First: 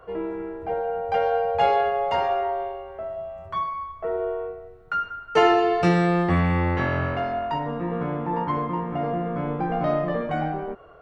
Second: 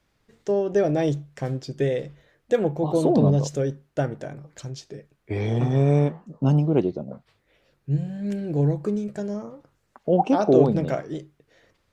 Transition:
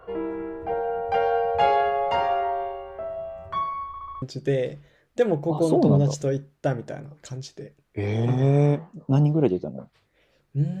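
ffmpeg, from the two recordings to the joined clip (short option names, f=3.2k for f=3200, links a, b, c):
-filter_complex "[0:a]apad=whole_dur=10.8,atrim=end=10.8,asplit=5[a][b][c][d][e];[a]atrim=end=3.942[f];[b]atrim=start=3.868:end=3.942[g];[c]atrim=start=3.868:end=3.942[h];[d]atrim=start=3.868:end=3.942[i];[e]atrim=start=3.868:end=3.942[j];[1:a]atrim=start=1.548:end=8.13[k];[f][g]acrossfade=d=0.004:c1=hsin:c2=hsin[l];[l][h]acrossfade=d=0.004:c1=hsin:c2=hsin[m];[m][i]acrossfade=d=0.004:c1=hsin:c2=hsin[n];[n][j]acrossfade=d=0.004:c1=hsin:c2=hsin[o];[o][k]acrossfade=d=0.004:c1=hsin:c2=hsin"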